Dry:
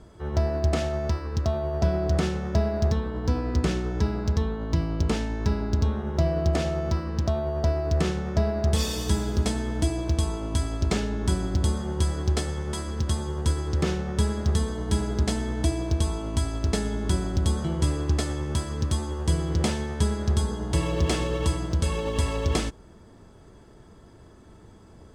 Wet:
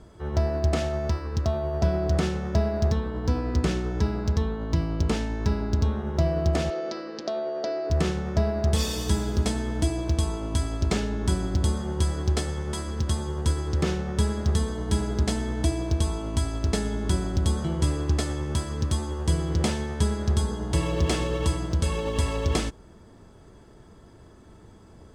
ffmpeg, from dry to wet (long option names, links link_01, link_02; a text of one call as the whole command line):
ffmpeg -i in.wav -filter_complex "[0:a]asettb=1/sr,asplit=3[link_01][link_02][link_03];[link_01]atrim=end=6.704[link_04];[link_02]atrim=start=6.7:end=7.9,asetpts=PTS-STARTPTS,afade=type=in:duration=0.004:curve=qsin,afade=type=out:start_time=1.196:duration=0.004:curve=qsin,highpass=frequency=280:width=0.5412,highpass=frequency=280:width=1.3066,equalizer=frequency=520:width_type=q:width=4:gain=5,equalizer=frequency=980:width_type=q:width=4:gain=-8,equalizer=frequency=4500:width_type=q:width=4:gain=5,lowpass=frequency=6300:width=0.5412,lowpass=frequency=6300:width=1.3066[link_05];[link_03]atrim=start=7.896[link_06];[link_04][link_05]acrossfade=duration=0.004:curve1=hsin:curve2=qsin[link_07];[link_07][link_06]acrossfade=duration=0.004:curve1=qsin:curve2=hsin" out.wav